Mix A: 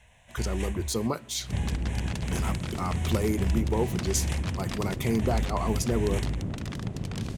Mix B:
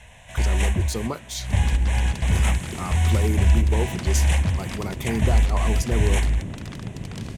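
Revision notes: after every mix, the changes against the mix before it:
first sound +11.0 dB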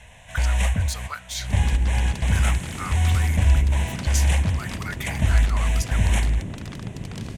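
speech: add resonant high-pass 1600 Hz, resonance Q 4.4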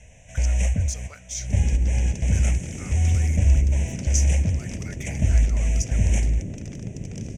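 master: add EQ curve 580 Hz 0 dB, 1100 Hz -20 dB, 2400 Hz -4 dB, 4200 Hz -17 dB, 5900 Hz +6 dB, 12000 Hz -15 dB

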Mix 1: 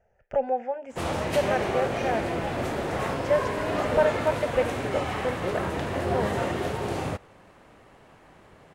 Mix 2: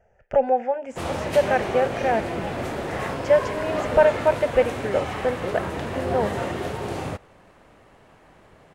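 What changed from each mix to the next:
speech +6.0 dB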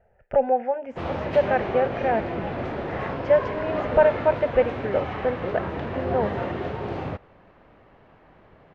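master: add air absorption 280 m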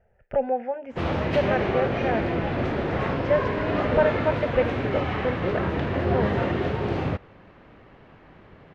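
background +6.0 dB; master: add bell 780 Hz -5 dB 1.6 oct

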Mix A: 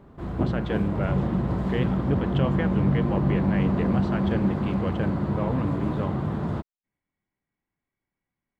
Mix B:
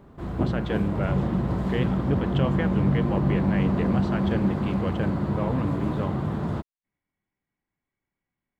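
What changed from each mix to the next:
master: add high shelf 5100 Hz +5 dB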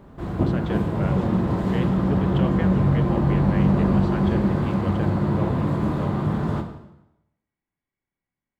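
speech -3.5 dB; reverb: on, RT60 0.90 s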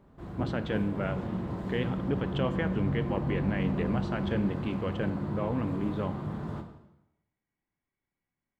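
background -12.0 dB

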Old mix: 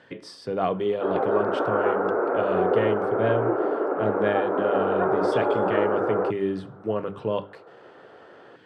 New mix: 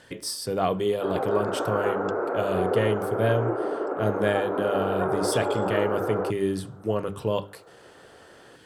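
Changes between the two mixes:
background -3.5 dB; master: remove BPF 130–2800 Hz

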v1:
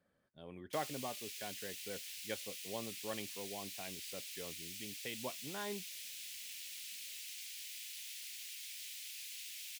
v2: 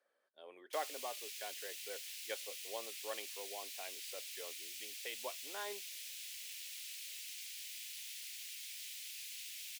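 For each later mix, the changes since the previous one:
master: add HPF 420 Hz 24 dB/oct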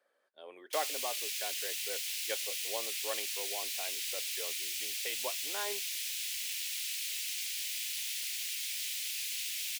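speech +5.0 dB; background +10.5 dB

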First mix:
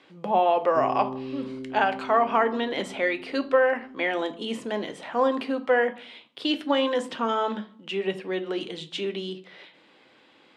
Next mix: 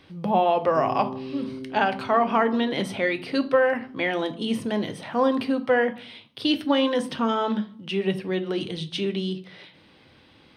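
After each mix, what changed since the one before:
speech: remove BPF 320–3500 Hz; master: add polynomial smoothing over 15 samples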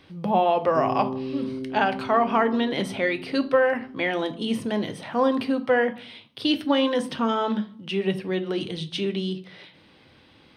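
background +4.0 dB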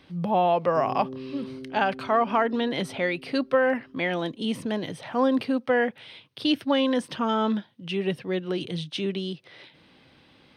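background -6.5 dB; reverb: off

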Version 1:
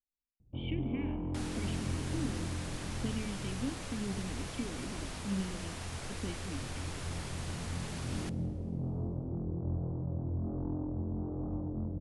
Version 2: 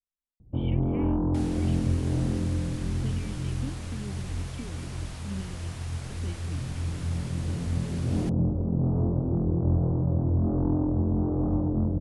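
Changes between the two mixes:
first sound +11.5 dB; reverb: off

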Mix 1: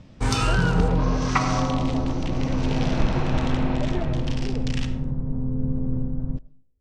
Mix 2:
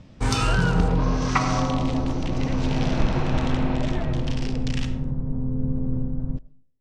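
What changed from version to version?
speech: add tilt +4 dB/oct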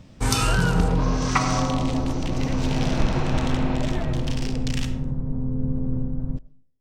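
master: remove air absorption 69 m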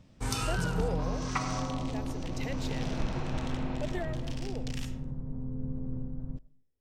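background -10.5 dB

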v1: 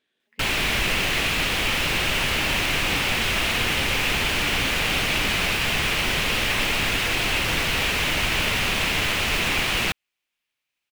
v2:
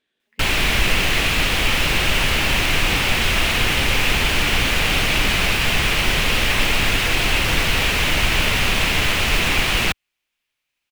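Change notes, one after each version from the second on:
background +3.5 dB; master: add low shelf 68 Hz +8 dB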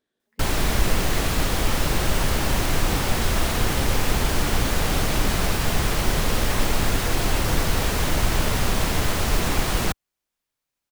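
master: add bell 2600 Hz -14.5 dB 1.2 oct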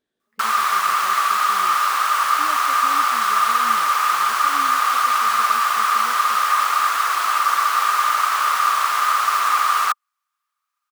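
background: add resonant high-pass 1200 Hz, resonance Q 15

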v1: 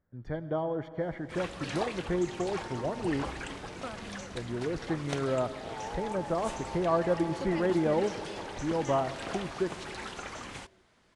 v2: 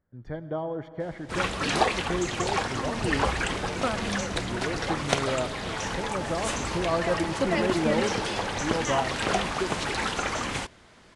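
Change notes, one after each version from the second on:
first sound +12.0 dB; second sound: remove steep high-pass 180 Hz 72 dB/oct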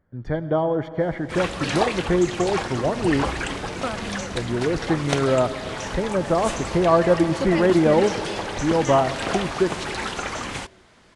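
speech +10.0 dB

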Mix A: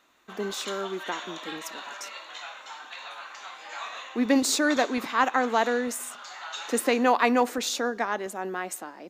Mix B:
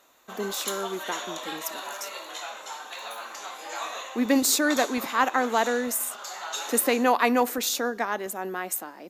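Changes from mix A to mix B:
background: remove band-pass 2200 Hz, Q 0.65; master: add bell 13000 Hz +14.5 dB 0.69 oct

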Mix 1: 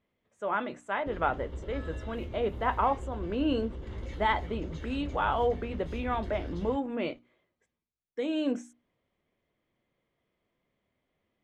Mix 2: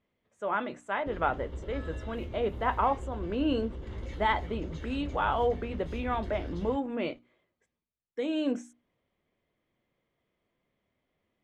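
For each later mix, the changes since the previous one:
none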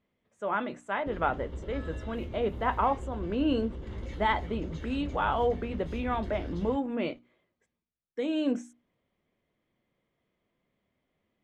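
master: add bell 200 Hz +3 dB 0.95 oct

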